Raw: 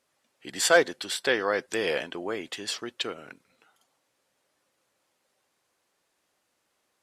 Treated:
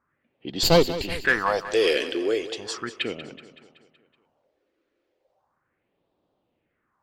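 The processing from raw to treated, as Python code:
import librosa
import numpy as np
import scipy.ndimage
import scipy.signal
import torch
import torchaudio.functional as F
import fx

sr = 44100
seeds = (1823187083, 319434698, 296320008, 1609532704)

p1 = fx.lower_of_two(x, sr, delay_ms=0.43, at=(0.63, 1.25))
p2 = fx.phaser_stages(p1, sr, stages=4, low_hz=140.0, high_hz=1800.0, hz=0.36, feedback_pct=40)
p3 = np.clip(p2, -10.0 ** (-24.5 / 20.0), 10.0 ** (-24.5 / 20.0))
p4 = p2 + (p3 * librosa.db_to_amplitude(-5.0))
p5 = fx.env_lowpass(p4, sr, base_hz=1400.0, full_db=-22.5)
p6 = fx.echo_feedback(p5, sr, ms=188, feedback_pct=55, wet_db=-14.0)
y = p6 * librosa.db_to_amplitude(4.0)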